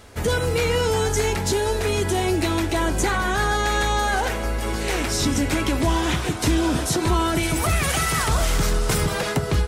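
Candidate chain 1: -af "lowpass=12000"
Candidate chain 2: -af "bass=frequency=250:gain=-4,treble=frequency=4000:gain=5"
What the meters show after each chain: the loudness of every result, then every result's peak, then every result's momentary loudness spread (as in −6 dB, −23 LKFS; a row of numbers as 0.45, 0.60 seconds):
−22.0, −21.5 LKFS; −11.0, −8.5 dBFS; 3, 4 LU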